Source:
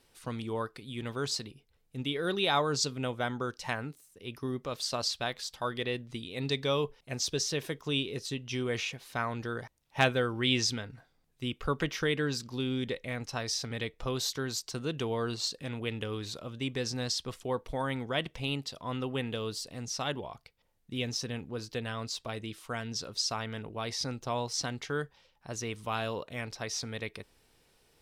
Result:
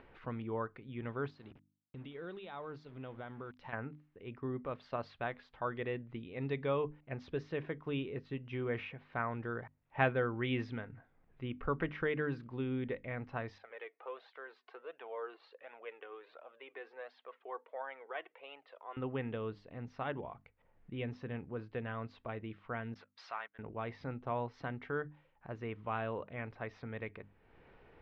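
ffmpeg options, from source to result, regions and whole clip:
-filter_complex "[0:a]asettb=1/sr,asplit=3[s0][s1][s2];[s0]atrim=end=1.304[s3];[s1]atrim=start=1.3:end=3.73,asetpts=PTS-STARTPTS,afade=t=in:d=0.004:c=qsin,afade=t=out:st=2.426:d=0.004:c=qsin,highshelf=f=2800:t=q:w=1.5:g=6.5,acompressor=threshold=0.01:ratio=3:attack=3.2:release=140:knee=1:detection=peak,aeval=exprs='val(0)*gte(abs(val(0)),0.00282)':c=same[s4];[s2]atrim=start=3.726[s5];[s3][s4]acrossfade=d=0.004:c1=hsin:c2=qsin[s6];[s6][s5]acrossfade=d=0.004:c1=qsin:c2=hsin,asettb=1/sr,asplit=3[s7][s8][s9];[s7]atrim=end=13.584[s10];[s8]atrim=start=13.58:end=18.97,asetpts=PTS-STARTPTS,afade=t=in:d=0.004:c=qsin,afade=t=out:st=5.386:d=0.004:c=qsin,highpass=f=480:w=0.5412,highpass=f=480:w=1.3066,equalizer=f=6700:w=1.4:g=-11.5,flanger=delay=1.1:depth=1.8:regen=28:speed=1.4:shape=triangular[s11];[s9]atrim=start=18.966[s12];[s10][s11]acrossfade=d=0.004:c1=hsin:c2=qsin[s13];[s13][s12]acrossfade=d=0.004:c1=qsin:c2=hsin,asettb=1/sr,asplit=3[s14][s15][s16];[s14]atrim=end=22.944[s17];[s15]atrim=start=22.94:end=23.59,asetpts=PTS-STARTPTS,afade=t=in:d=0.004:c=qsin,afade=t=out:st=0.646:d=0.004:c=qsin,aeval=exprs='val(0)+0.5*0.00944*sgn(val(0))':c=same,highpass=910,agate=range=0.00631:threshold=0.00891:ratio=16:release=100:detection=peak[s18];[s16]atrim=start=23.586[s19];[s17][s18]acrossfade=d=0.004:c1=hsin:c2=qsin[s20];[s20][s19]acrossfade=d=0.004:c1=qsin:c2=hsin,lowpass=f=2200:w=0.5412,lowpass=f=2200:w=1.3066,bandreject=f=50:t=h:w=6,bandreject=f=100:t=h:w=6,bandreject=f=150:t=h:w=6,bandreject=f=200:t=h:w=6,bandreject=f=250:t=h:w=6,bandreject=f=300:t=h:w=6,acompressor=mode=upward:threshold=0.00562:ratio=2.5,volume=0.668"

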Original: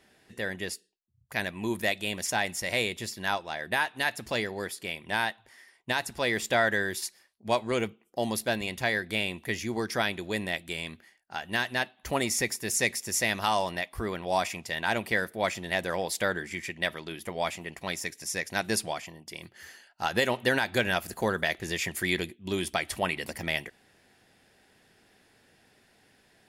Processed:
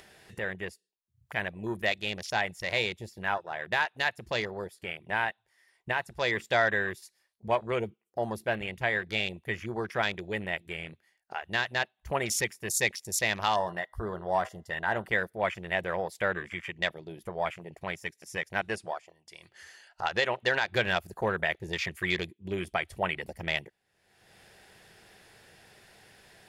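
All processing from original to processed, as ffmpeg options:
-filter_complex "[0:a]asettb=1/sr,asplit=3[s0][s1][s2];[s0]atrim=end=13.544[s3];[s1]atrim=start=13.54:end=15.08,asetpts=PTS-STARTPTS,afade=t=in:d=0.004:c=qsin,afade=t=out:st=1.536:d=0.004:c=qsin,asuperstop=centerf=2400:order=8:qfactor=3.5,bandreject=f=127.4:t=h:w=4,bandreject=f=254.8:t=h:w=4,bandreject=f=382.2:t=h:w=4,bandreject=f=509.6:t=h:w=4,bandreject=f=637:t=h:w=4,bandreject=f=764.4:t=h:w=4,bandreject=f=891.8:t=h:w=4,bandreject=f=1019.2:t=h:w=4,bandreject=f=1146.6:t=h:w=4,bandreject=f=1274:t=h:w=4,bandreject=f=1401.4:t=h:w=4,bandreject=f=1528.8:t=h:w=4,bandreject=f=1656.2:t=h:w=4,bandreject=f=1783.6:t=h:w=4,bandreject=f=1911:t=h:w=4,bandreject=f=2038.4:t=h:w=4,bandreject=f=2165.8:t=h:w=4,bandreject=f=2293.2:t=h:w=4,bandreject=f=2420.6:t=h:w=4,bandreject=f=2548:t=h:w=4[s4];[s2]atrim=start=15.076[s5];[s3][s4]acrossfade=d=0.004:c1=hsin:c2=qsin[s6];[s6][s5]acrossfade=d=0.004:c1=qsin:c2=hsin,asettb=1/sr,asplit=3[s7][s8][s9];[s7]atrim=end=18.614[s10];[s8]atrim=start=18.61:end=20.72,asetpts=PTS-STARTPTS,afade=t=in:d=0.004:c=qsin,afade=t=out:st=2.106:d=0.004:c=qsin,lowpass=f=10000:w=0.5412,lowpass=f=10000:w=1.3066,equalizer=f=150:w=0.56:g=-5.5[s11];[s9]atrim=start=20.716[s12];[s10][s11]acrossfade=d=0.004:c1=hsin:c2=qsin[s13];[s13][s12]acrossfade=d=0.004:c1=qsin:c2=hsin,afwtdn=0.0158,equalizer=f=260:t=o:w=0.46:g=-11.5,acompressor=mode=upward:threshold=0.0141:ratio=2.5"

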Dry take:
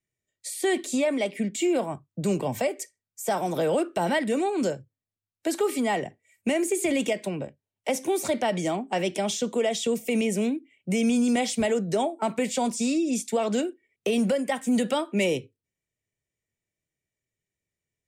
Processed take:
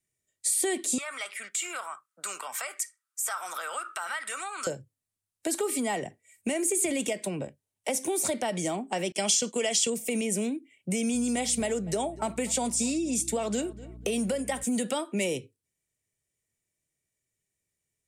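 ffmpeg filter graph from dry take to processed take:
-filter_complex "[0:a]asettb=1/sr,asplit=3[s0][s1][s2];[s0]atrim=end=0.984[s3];[s1]atrim=start=0.98:end=4.67,asetpts=PTS-STARTPTS,afade=t=in:d=0.004:c=qsin,afade=t=out:st=3.686:d=0.004:c=qsin,highpass=f=1300:t=q:w=10,acompressor=threshold=0.0158:ratio=2:attack=3.2:release=140:knee=1:detection=peak[s4];[s2]atrim=start=4.666[s5];[s3][s4]acrossfade=d=0.004:c1=hsin:c2=qsin[s6];[s6][s5]acrossfade=d=0.004:c1=qsin:c2=hsin,asettb=1/sr,asplit=3[s7][s8][s9];[s7]atrim=end=9.124[s10];[s8]atrim=start=9.12:end=9.9,asetpts=PTS-STARTPTS,afade=t=in:d=0.004:c=qsin,afade=t=out:st=0.776:d=0.004:c=qsin,agate=range=0.0224:threshold=0.0282:ratio=3:release=100:detection=peak,equalizer=f=4200:w=0.49:g=11,bandreject=f=3700:w=5.5[s11];[s9]atrim=start=9.896[s12];[s10][s11]acrossfade=d=0.004:c1=hsin:c2=qsin[s13];[s13][s12]acrossfade=d=0.004:c1=qsin:c2=hsin,asettb=1/sr,asplit=3[s14][s15][s16];[s14]atrim=end=11.144[s17];[s15]atrim=start=11.14:end=14.64,asetpts=PTS-STARTPTS,afade=t=in:d=0.004:c=qsin,afade=t=out:st=3.496:d=0.004:c=qsin,aeval=exprs='val(0)+0.00708*(sin(2*PI*60*n/s)+sin(2*PI*2*60*n/s)/2+sin(2*PI*3*60*n/s)/3+sin(2*PI*4*60*n/s)/4+sin(2*PI*5*60*n/s)/5)':c=same,asplit=2[s18][s19];[s19]adelay=243,lowpass=f=2200:p=1,volume=0.0891,asplit=2[s20][s21];[s21]adelay=243,lowpass=f=2200:p=1,volume=0.28[s22];[s18][s20][s22]amix=inputs=3:normalize=0,atrim=end_sample=154350[s23];[s16]atrim=start=14.636[s24];[s17][s23]acrossfade=d=0.004:c1=hsin:c2=qsin[s25];[s25][s24]acrossfade=d=0.004:c1=qsin:c2=hsin,acompressor=threshold=0.0316:ratio=2,equalizer=f=9400:t=o:w=1.1:g=11"

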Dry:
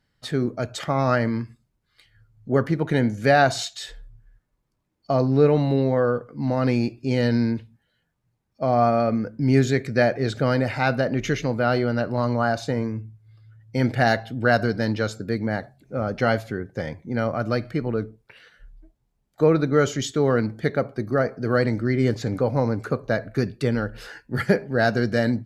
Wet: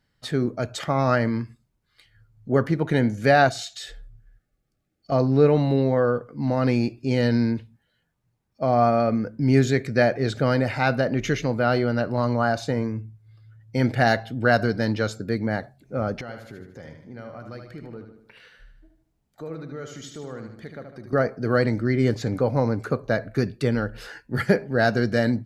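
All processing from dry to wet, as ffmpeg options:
-filter_complex "[0:a]asettb=1/sr,asplit=3[s0][s1][s2];[s0]atrim=end=3.494[s3];[s1]atrim=start=3.49:end=5.12,asetpts=PTS-STARTPTS,afade=t=in:d=0.004:c=qsin,afade=t=out:st=1.626:d=0.004:c=qsin,acompressor=threshold=0.0224:ratio=2:attack=3.2:release=140:knee=1:detection=peak,asuperstop=centerf=980:order=20:qfactor=3.7[s4];[s2]atrim=start=5.116[s5];[s3][s4]acrossfade=d=0.004:c1=hsin:c2=qsin[s6];[s6][s5]acrossfade=d=0.004:c1=qsin:c2=hsin,asettb=1/sr,asplit=3[s7][s8][s9];[s7]atrim=end=16.214[s10];[s8]atrim=start=16.21:end=21.13,asetpts=PTS-STARTPTS,afade=t=in:d=0.004:c=qsin,afade=t=out:st=4.916:d=0.004:c=qsin,acompressor=threshold=0.00447:ratio=2:attack=3.2:release=140:knee=1:detection=peak,aecho=1:1:76|152|228|304|380|456:0.473|0.222|0.105|0.0491|0.0231|0.0109,atrim=end_sample=216972[s11];[s9]atrim=start=21.126[s12];[s10][s11]acrossfade=d=0.004:c1=hsin:c2=qsin[s13];[s13][s12]acrossfade=d=0.004:c1=qsin:c2=hsin"

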